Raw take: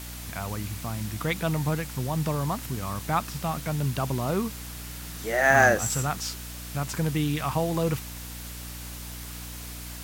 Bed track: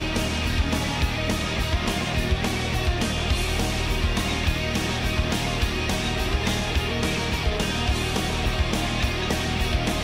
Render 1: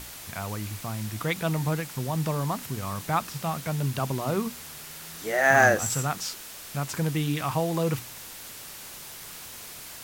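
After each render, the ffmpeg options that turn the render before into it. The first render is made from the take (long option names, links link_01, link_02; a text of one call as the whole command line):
ffmpeg -i in.wav -af "bandreject=frequency=60:width_type=h:width=6,bandreject=frequency=120:width_type=h:width=6,bandreject=frequency=180:width_type=h:width=6,bandreject=frequency=240:width_type=h:width=6,bandreject=frequency=300:width_type=h:width=6" out.wav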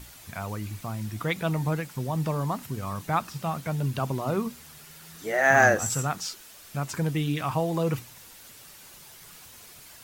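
ffmpeg -i in.wav -af "afftdn=noise_reduction=8:noise_floor=-42" out.wav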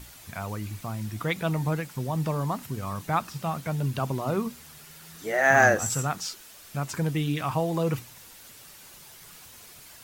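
ffmpeg -i in.wav -af anull out.wav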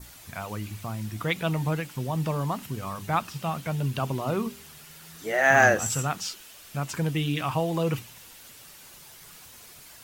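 ffmpeg -i in.wav -af "bandreject=frequency=99.56:width_type=h:width=4,bandreject=frequency=199.12:width_type=h:width=4,bandreject=frequency=298.68:width_type=h:width=4,bandreject=frequency=398.24:width_type=h:width=4,adynamicequalizer=threshold=0.00282:dfrequency=2900:dqfactor=2.7:tfrequency=2900:tqfactor=2.7:attack=5:release=100:ratio=0.375:range=3:mode=boostabove:tftype=bell" out.wav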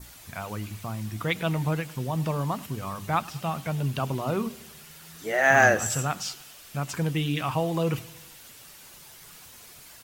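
ffmpeg -i in.wav -af "aecho=1:1:103|206|309|412:0.0794|0.0469|0.0277|0.0163" out.wav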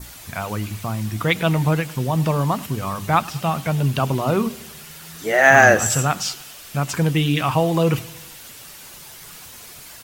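ffmpeg -i in.wav -af "volume=8dB,alimiter=limit=-1dB:level=0:latency=1" out.wav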